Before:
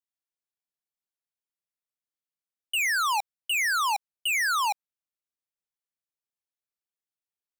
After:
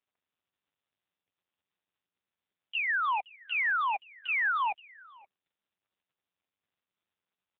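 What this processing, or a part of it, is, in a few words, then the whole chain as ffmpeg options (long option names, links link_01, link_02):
satellite phone: -af "highpass=370,lowpass=3100,aecho=1:1:523:0.0841" -ar 8000 -c:a libopencore_amrnb -b:a 5900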